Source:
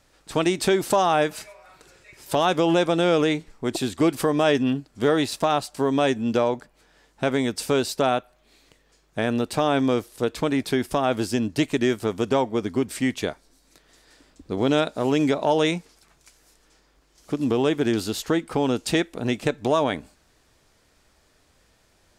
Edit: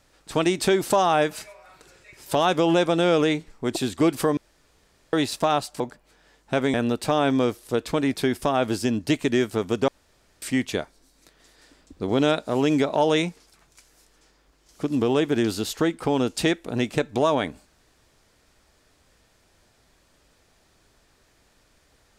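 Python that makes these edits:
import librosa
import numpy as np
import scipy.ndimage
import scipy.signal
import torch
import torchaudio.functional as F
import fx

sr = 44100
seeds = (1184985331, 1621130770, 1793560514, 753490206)

y = fx.edit(x, sr, fx.room_tone_fill(start_s=4.37, length_s=0.76),
    fx.cut(start_s=5.8, length_s=0.7),
    fx.cut(start_s=7.44, length_s=1.79),
    fx.room_tone_fill(start_s=12.37, length_s=0.54), tone=tone)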